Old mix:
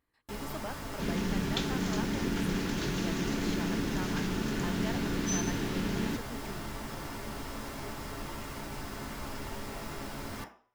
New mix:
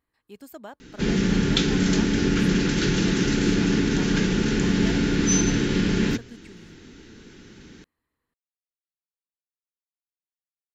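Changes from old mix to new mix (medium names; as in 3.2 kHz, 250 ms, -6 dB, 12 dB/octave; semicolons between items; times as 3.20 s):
first sound: muted; second sound +11.0 dB; reverb: off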